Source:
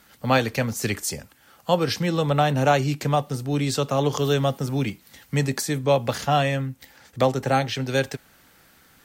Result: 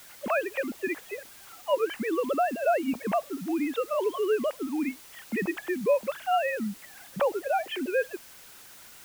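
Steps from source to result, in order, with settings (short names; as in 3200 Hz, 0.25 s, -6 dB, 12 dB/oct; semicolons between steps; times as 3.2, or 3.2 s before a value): sine-wave speech; compressor 1.5:1, threshold -42 dBFS, peak gain reduction 11 dB; added noise white -53 dBFS; gain +3 dB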